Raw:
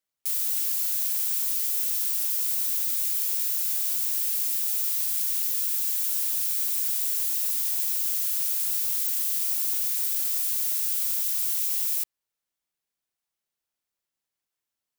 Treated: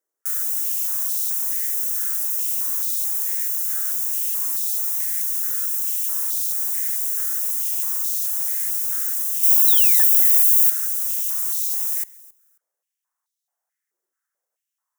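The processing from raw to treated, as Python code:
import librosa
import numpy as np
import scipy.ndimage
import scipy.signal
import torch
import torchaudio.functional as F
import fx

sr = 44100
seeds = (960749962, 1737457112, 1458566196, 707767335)

y = fx.band_shelf(x, sr, hz=3300.0, db=-13.0, octaves=1.3)
y = fx.spec_paint(y, sr, seeds[0], shape='fall', start_s=9.67, length_s=0.36, low_hz=1700.0, high_hz=4100.0, level_db=-36.0)
y = fx.high_shelf(y, sr, hz=8100.0, db=10.0, at=(9.43, 10.7))
y = fx.echo_feedback(y, sr, ms=270, feedback_pct=17, wet_db=-22)
y = fx.filter_held_highpass(y, sr, hz=4.6, low_hz=380.0, high_hz=3800.0)
y = F.gain(torch.from_numpy(y), 3.0).numpy()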